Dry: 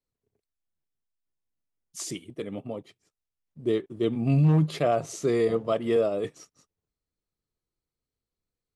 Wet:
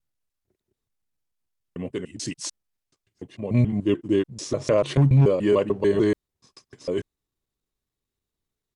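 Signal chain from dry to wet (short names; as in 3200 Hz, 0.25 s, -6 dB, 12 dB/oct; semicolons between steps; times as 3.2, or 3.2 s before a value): slices in reverse order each 0.146 s, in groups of 6; pitch shift -2 st; gain +4 dB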